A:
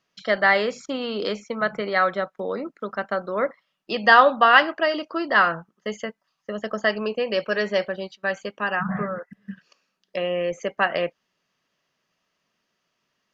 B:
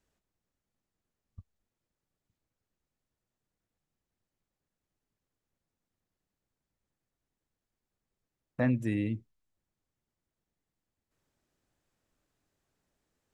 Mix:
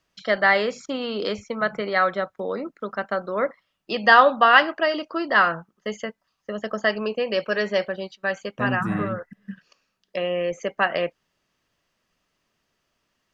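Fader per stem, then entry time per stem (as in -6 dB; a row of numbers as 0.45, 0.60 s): 0.0, +0.5 dB; 0.00, 0.00 s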